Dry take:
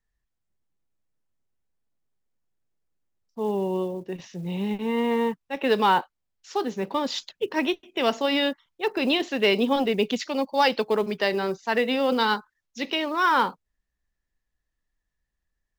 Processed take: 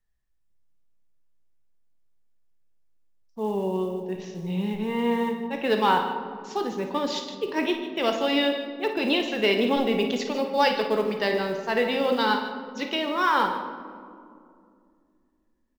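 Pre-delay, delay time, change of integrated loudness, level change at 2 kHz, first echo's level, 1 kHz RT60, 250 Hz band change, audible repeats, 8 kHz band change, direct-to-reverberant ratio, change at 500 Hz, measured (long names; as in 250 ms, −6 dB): 6 ms, 55 ms, −0.5 dB, −0.5 dB, −10.5 dB, 2.1 s, 0.0 dB, 2, −1.0 dB, 4.0 dB, 0.0 dB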